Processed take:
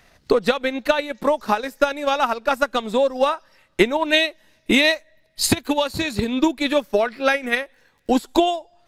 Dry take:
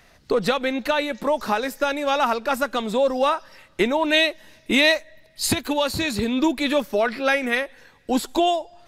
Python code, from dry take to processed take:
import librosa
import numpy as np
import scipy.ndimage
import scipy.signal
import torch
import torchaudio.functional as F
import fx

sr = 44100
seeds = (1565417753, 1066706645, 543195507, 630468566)

y = fx.transient(x, sr, attack_db=7, sustain_db=-7)
y = fx.dmg_crackle(y, sr, seeds[0], per_s=26.0, level_db=-46.0, at=(6.77, 8.11), fade=0.02)
y = F.gain(torch.from_numpy(y), -1.0).numpy()